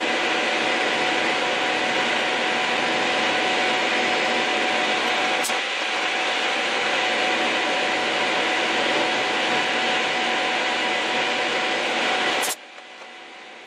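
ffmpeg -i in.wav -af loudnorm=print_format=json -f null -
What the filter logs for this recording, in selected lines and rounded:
"input_i" : "-21.0",
"input_tp" : "-8.1",
"input_lra" : "2.7",
"input_thresh" : "-31.4",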